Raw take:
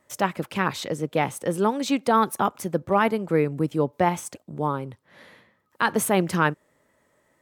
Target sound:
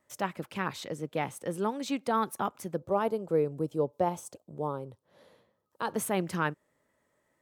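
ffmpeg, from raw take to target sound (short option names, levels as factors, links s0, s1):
-filter_complex "[0:a]asettb=1/sr,asplit=3[s0][s1][s2];[s0]atrim=end=2.764[s3];[s1]atrim=start=2.76:end=5.95,asetpts=PTS-STARTPTS,afade=t=in:d=0.004:c=qsin,afade=t=out:st=3.186:d=0.004:c=qsin,equalizer=f=250:t=o:w=1:g=-3,equalizer=f=500:t=o:w=1:g=6,equalizer=f=2000:t=o:w=1:g=-11[s4];[s2]atrim=start=5.946[s5];[s3][s4]acrossfade=d=0.004:c1=hsin:c2=qsin[s6];[s6][s5]acrossfade=d=0.004:c1=qsin:c2=hsin,volume=0.376"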